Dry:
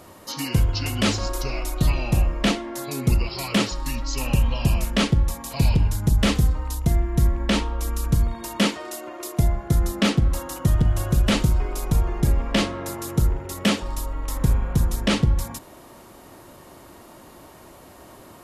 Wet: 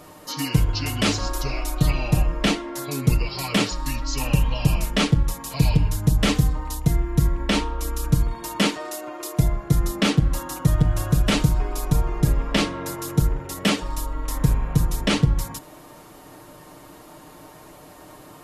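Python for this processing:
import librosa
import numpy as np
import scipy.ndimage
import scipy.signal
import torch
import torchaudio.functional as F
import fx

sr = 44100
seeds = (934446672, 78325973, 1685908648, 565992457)

y = x + 0.55 * np.pad(x, (int(6.6 * sr / 1000.0), 0))[:len(x)]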